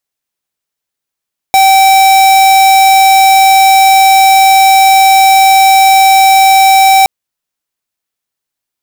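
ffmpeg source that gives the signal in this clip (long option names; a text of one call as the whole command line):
ffmpeg -f lavfi -i "aevalsrc='0.562*(2*lt(mod(773*t,1),0.5)-1)':duration=5.52:sample_rate=44100" out.wav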